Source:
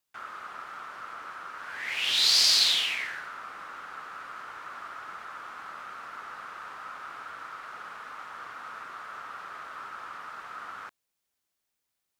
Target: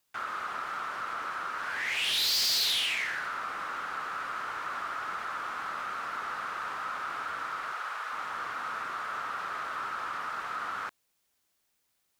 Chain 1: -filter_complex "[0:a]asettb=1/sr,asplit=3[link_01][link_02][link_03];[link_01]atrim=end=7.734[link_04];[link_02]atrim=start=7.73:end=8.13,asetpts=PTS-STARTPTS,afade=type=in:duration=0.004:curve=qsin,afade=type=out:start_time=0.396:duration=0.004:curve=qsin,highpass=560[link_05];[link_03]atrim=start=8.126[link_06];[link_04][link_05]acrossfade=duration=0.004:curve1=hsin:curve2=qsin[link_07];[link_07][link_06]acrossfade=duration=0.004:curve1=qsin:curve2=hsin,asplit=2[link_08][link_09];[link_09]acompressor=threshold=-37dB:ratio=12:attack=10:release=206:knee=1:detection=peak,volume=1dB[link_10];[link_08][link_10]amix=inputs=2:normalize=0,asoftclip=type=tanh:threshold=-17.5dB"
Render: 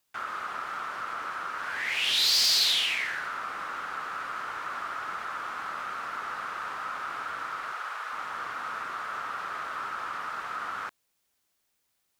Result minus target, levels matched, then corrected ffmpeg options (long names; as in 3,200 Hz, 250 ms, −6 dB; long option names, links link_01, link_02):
soft clipping: distortion −7 dB
-filter_complex "[0:a]asettb=1/sr,asplit=3[link_01][link_02][link_03];[link_01]atrim=end=7.734[link_04];[link_02]atrim=start=7.73:end=8.13,asetpts=PTS-STARTPTS,afade=type=in:duration=0.004:curve=qsin,afade=type=out:start_time=0.396:duration=0.004:curve=qsin,highpass=560[link_05];[link_03]atrim=start=8.126[link_06];[link_04][link_05]acrossfade=duration=0.004:curve1=hsin:curve2=qsin[link_07];[link_07][link_06]acrossfade=duration=0.004:curve1=qsin:curve2=hsin,asplit=2[link_08][link_09];[link_09]acompressor=threshold=-37dB:ratio=12:attack=10:release=206:knee=1:detection=peak,volume=1dB[link_10];[link_08][link_10]amix=inputs=2:normalize=0,asoftclip=type=tanh:threshold=-24.5dB"